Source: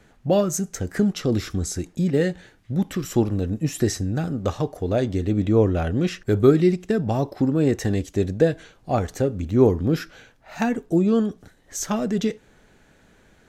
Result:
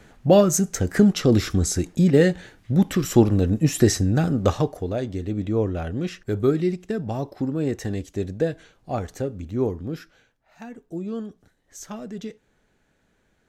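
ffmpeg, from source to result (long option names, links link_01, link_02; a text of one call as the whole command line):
ffmpeg -i in.wav -af "volume=11.5dB,afade=type=out:start_time=4.49:duration=0.45:silence=0.334965,afade=type=out:start_time=9.17:duration=1.41:silence=0.223872,afade=type=in:start_time=10.58:duration=0.53:silence=0.446684" out.wav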